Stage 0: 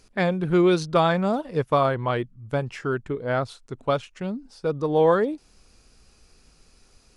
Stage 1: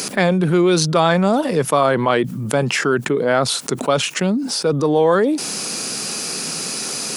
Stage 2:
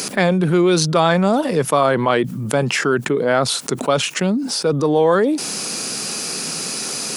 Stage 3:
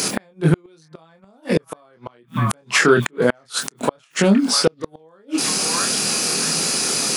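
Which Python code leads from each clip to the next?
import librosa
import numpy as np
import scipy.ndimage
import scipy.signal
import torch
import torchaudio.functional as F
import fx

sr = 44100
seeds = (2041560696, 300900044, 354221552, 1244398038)

y1 = scipy.signal.sosfilt(scipy.signal.butter(6, 150.0, 'highpass', fs=sr, output='sos'), x)
y1 = fx.high_shelf(y1, sr, hz=6500.0, db=11.5)
y1 = fx.env_flatten(y1, sr, amount_pct=70)
y1 = y1 * librosa.db_to_amplitude(2.5)
y2 = y1
y3 = fx.doubler(y2, sr, ms=25.0, db=-4.5)
y3 = fx.echo_stepped(y3, sr, ms=644, hz=1400.0, octaves=0.7, feedback_pct=70, wet_db=-9)
y3 = fx.gate_flip(y3, sr, shuts_db=-6.0, range_db=-40)
y3 = y3 * librosa.db_to_amplitude(3.0)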